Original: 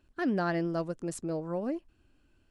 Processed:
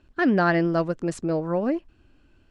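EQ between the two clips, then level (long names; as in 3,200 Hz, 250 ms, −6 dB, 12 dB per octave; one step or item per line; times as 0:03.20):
dynamic equaliser 1,900 Hz, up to +4 dB, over −48 dBFS, Q 0.87
high-frequency loss of the air 73 metres
+8.5 dB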